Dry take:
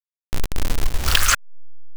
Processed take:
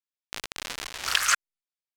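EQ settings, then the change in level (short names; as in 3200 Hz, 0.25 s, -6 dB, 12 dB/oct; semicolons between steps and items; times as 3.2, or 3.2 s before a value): dynamic EQ 3400 Hz, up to -6 dB, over -34 dBFS, Q 1.1; band-pass 3100 Hz, Q 0.55; 0.0 dB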